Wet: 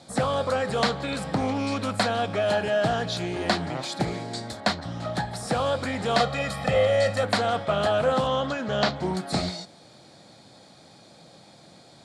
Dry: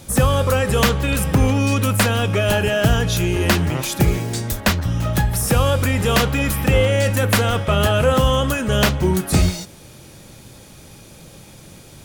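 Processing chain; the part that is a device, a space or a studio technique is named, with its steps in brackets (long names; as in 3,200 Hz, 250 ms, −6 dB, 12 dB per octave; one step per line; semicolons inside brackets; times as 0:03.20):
0:08.27–0:08.96: low-pass filter 6,600 Hz 24 dB per octave
full-range speaker at full volume (highs frequency-modulated by the lows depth 0.22 ms; loudspeaker in its box 180–7,800 Hz, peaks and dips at 390 Hz −4 dB, 710 Hz +9 dB, 2,700 Hz −8 dB, 4,200 Hz +8 dB, 6,200 Hz −8 dB)
0:06.20–0:07.24: comb filter 1.6 ms, depth 68%
level −6.5 dB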